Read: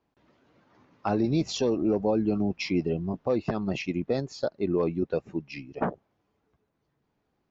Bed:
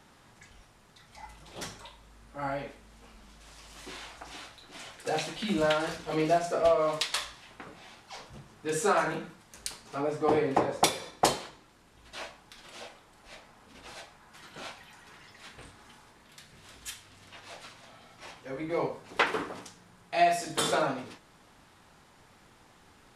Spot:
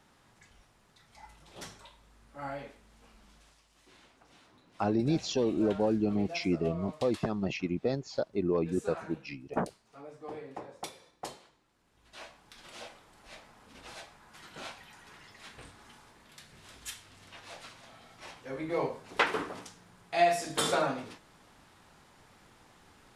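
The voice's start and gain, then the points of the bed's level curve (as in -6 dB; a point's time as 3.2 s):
3.75 s, -3.0 dB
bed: 3.38 s -5.5 dB
3.67 s -17 dB
11.4 s -17 dB
12.66 s -1 dB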